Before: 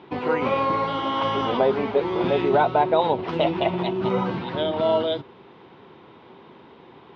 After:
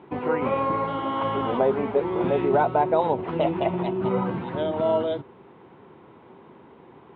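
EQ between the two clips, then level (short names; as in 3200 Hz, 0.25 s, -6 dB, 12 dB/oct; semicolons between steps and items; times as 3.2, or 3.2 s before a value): air absorption 480 m; 0.0 dB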